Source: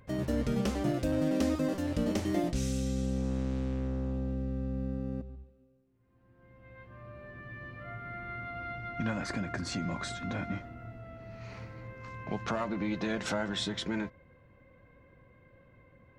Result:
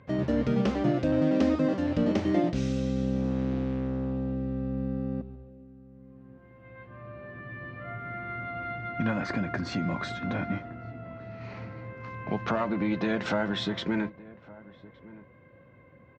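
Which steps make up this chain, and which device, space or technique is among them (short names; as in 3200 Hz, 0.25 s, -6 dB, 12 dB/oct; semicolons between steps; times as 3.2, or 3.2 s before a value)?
HPF 98 Hz 12 dB/oct; shout across a valley (air absorption 180 m; outdoor echo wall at 200 m, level -20 dB); gain +5.5 dB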